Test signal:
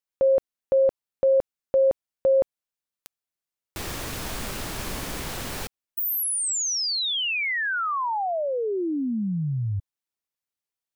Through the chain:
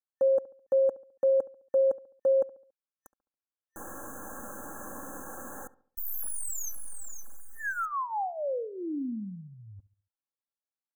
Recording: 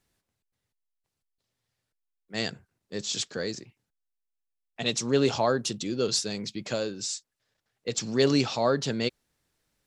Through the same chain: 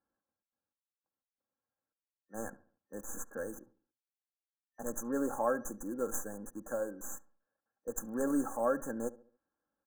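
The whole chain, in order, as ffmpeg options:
-filter_complex "[0:a]highpass=f=320:p=1,acrossover=split=2100[s0][s1];[s1]acrusher=bits=4:dc=4:mix=0:aa=0.000001[s2];[s0][s2]amix=inputs=2:normalize=0,afftfilt=real='re*(1-between(b*sr/4096,1800,6000))':imag='im*(1-between(b*sr/4096,1800,6000))':win_size=4096:overlap=0.75,aecho=1:1:3.7:0.61,asplit=2[s3][s4];[s4]adelay=70,lowpass=f=1600:p=1,volume=0.126,asplit=2[s5][s6];[s6]adelay=70,lowpass=f=1600:p=1,volume=0.44,asplit=2[s7][s8];[s8]adelay=70,lowpass=f=1600:p=1,volume=0.44,asplit=2[s9][s10];[s10]adelay=70,lowpass=f=1600:p=1,volume=0.44[s11];[s3][s5][s7][s9][s11]amix=inputs=5:normalize=0,volume=0.473"

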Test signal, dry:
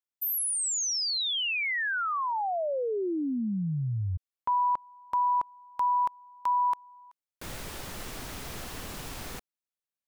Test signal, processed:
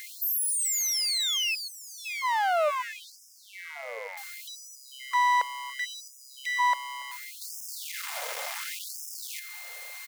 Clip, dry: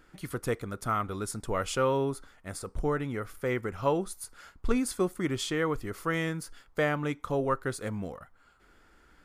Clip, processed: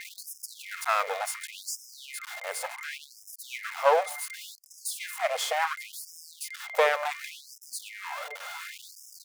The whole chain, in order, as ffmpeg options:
-filter_complex "[0:a]aeval=exprs='val(0)+0.5*0.0158*sgn(val(0))':c=same,equalizer=f=340:t=o:w=1.3:g=11,aeval=exprs='val(0)+0.00794*sin(2*PI*2100*n/s)':c=same,aeval=exprs='max(val(0),0)':c=same,asplit=2[s0][s1];[s1]adelay=1224,volume=0.126,highshelf=f=4000:g=-27.6[s2];[s0][s2]amix=inputs=2:normalize=0,afftfilt=real='re*gte(b*sr/1024,430*pow(5100/430,0.5+0.5*sin(2*PI*0.69*pts/sr)))':imag='im*gte(b*sr/1024,430*pow(5100/430,0.5+0.5*sin(2*PI*0.69*pts/sr)))':win_size=1024:overlap=0.75,volume=1.88"

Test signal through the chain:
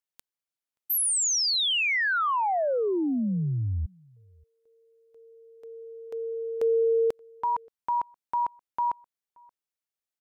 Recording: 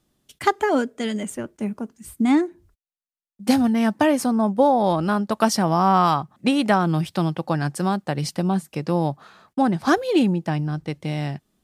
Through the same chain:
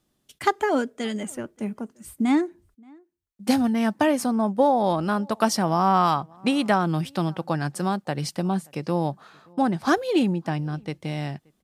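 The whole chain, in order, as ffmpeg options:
-filter_complex "[0:a]lowshelf=f=170:g=-3,asplit=2[s0][s1];[s1]adelay=577.3,volume=0.0398,highshelf=f=4000:g=-13[s2];[s0][s2]amix=inputs=2:normalize=0,volume=0.794"

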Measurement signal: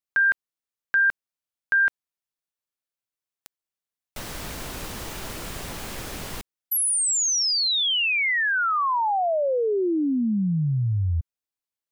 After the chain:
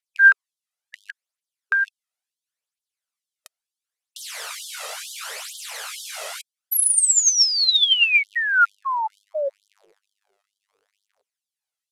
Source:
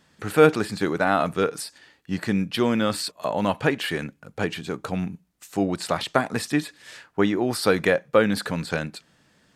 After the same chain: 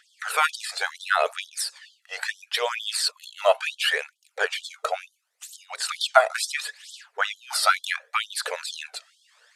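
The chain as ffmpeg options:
-af "aphaser=in_gain=1:out_gain=1:delay=1.6:decay=0.57:speed=0.72:type=triangular,lowpass=f=12000:w=0.5412,lowpass=f=12000:w=1.3066,afftfilt=real='re*gte(b*sr/1024,390*pow(3100/390,0.5+0.5*sin(2*PI*2.2*pts/sr)))':imag='im*gte(b*sr/1024,390*pow(3100/390,0.5+0.5*sin(2*PI*2.2*pts/sr)))':win_size=1024:overlap=0.75,volume=1.5"

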